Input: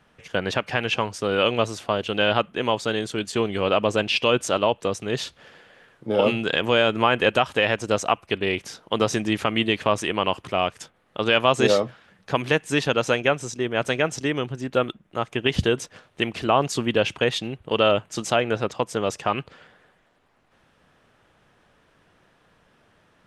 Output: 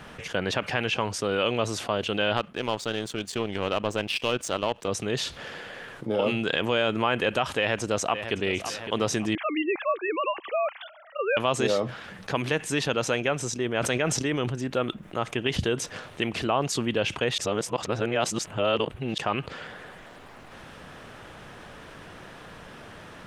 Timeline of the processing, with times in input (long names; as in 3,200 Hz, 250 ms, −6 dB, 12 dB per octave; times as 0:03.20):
0:02.37–0:04.88: power curve on the samples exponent 1.4
0:07.50–0:08.49: delay throw 560 ms, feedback 45%, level −17.5 dB
0:09.35–0:11.37: three sine waves on the formant tracks
0:13.80–0:14.54: level that may fall only so fast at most 65 dB per second
0:17.38–0:19.18: reverse
whole clip: envelope flattener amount 50%; level −7 dB